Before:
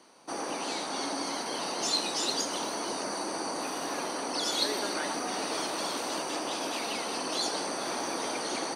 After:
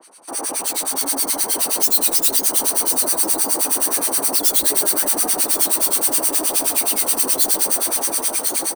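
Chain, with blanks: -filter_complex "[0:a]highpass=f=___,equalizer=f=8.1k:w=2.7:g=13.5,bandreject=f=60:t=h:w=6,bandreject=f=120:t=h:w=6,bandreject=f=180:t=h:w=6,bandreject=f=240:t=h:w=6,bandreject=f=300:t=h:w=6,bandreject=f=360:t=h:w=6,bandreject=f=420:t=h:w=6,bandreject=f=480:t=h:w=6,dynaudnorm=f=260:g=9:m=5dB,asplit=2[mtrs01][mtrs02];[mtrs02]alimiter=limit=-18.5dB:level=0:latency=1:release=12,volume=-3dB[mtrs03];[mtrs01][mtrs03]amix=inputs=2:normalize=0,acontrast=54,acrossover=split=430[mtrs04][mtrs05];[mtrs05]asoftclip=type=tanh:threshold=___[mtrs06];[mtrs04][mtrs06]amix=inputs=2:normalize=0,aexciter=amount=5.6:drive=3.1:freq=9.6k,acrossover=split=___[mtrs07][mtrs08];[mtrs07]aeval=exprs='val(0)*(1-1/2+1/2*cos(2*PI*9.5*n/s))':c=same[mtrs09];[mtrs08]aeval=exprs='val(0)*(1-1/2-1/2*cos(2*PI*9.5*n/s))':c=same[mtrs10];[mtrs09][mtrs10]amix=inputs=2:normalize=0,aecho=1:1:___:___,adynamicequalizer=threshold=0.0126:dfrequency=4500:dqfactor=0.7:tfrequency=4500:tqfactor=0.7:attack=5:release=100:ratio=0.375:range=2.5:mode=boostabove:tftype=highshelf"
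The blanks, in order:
260, -20.5dB, 1300, 1073, 0.178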